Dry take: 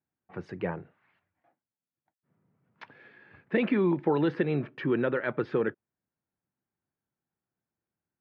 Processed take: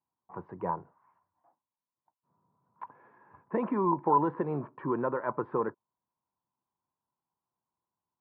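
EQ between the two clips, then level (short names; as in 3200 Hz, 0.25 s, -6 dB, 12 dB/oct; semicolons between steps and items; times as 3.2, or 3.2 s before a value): synth low-pass 1000 Hz, resonance Q 11; -5.5 dB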